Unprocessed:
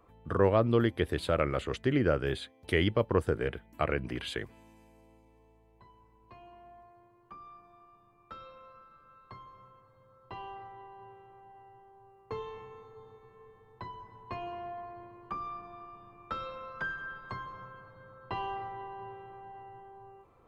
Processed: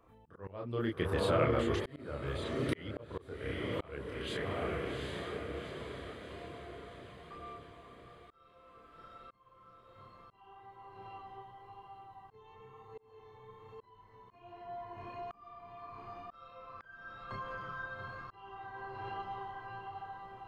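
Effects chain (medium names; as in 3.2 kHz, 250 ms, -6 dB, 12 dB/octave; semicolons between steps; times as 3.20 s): echo that smears into a reverb 793 ms, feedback 56%, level -5 dB; chorus voices 2, 1 Hz, delay 30 ms, depth 3 ms; slow attack 709 ms; trim +1.5 dB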